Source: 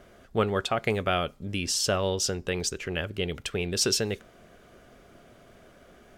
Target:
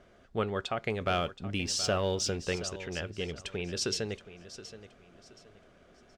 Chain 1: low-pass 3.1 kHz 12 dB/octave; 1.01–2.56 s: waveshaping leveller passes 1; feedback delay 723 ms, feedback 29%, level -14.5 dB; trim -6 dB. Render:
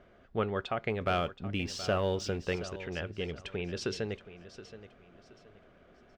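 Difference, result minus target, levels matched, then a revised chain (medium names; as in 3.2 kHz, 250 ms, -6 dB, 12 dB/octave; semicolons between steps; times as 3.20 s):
8 kHz band -9.5 dB
low-pass 6.8 kHz 12 dB/octave; 1.01–2.56 s: waveshaping leveller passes 1; feedback delay 723 ms, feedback 29%, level -14.5 dB; trim -6 dB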